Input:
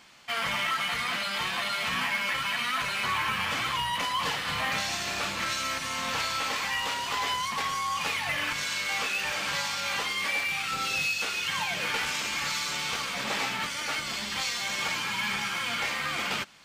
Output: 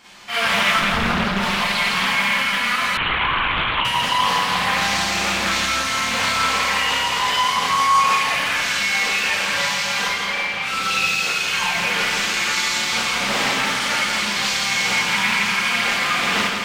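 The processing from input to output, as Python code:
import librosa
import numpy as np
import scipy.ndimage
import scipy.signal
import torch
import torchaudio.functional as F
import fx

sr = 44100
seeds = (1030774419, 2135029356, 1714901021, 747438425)

y = fx.tilt_eq(x, sr, slope=-4.5, at=(0.75, 1.38))
y = fx.rider(y, sr, range_db=10, speed_s=2.0)
y = fx.air_absorb(y, sr, metres=210.0, at=(10.07, 10.61), fade=0.02)
y = fx.echo_feedback(y, sr, ms=166, feedback_pct=57, wet_db=-5)
y = fx.rev_schroeder(y, sr, rt60_s=0.43, comb_ms=31, drr_db=-7.5)
y = fx.lpc_vocoder(y, sr, seeds[0], excitation='whisper', order=10, at=(2.97, 3.85))
y = fx.doppler_dist(y, sr, depth_ms=0.56)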